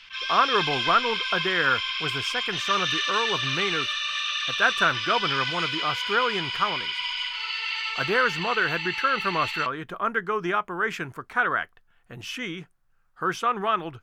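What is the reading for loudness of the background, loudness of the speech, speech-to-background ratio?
-26.5 LUFS, -26.5 LUFS, 0.0 dB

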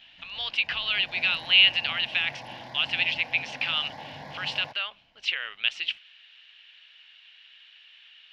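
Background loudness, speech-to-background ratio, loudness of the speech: -43.5 LUFS, 18.5 dB, -25.0 LUFS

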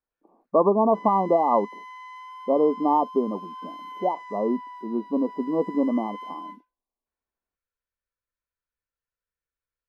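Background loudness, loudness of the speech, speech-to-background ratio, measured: -40.5 LUFS, -24.0 LUFS, 16.5 dB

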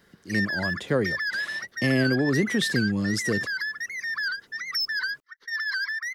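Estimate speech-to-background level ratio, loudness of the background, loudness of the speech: 2.5 dB, -29.0 LUFS, -26.5 LUFS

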